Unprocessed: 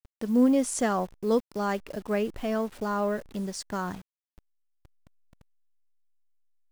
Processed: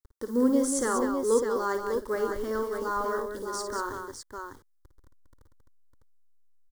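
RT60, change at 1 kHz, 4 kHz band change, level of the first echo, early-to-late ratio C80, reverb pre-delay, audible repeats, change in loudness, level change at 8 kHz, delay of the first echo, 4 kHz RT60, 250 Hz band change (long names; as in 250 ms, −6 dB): no reverb audible, +1.0 dB, −1.0 dB, −9.0 dB, no reverb audible, no reverb audible, 3, 0.0 dB, +3.0 dB, 55 ms, no reverb audible, −2.5 dB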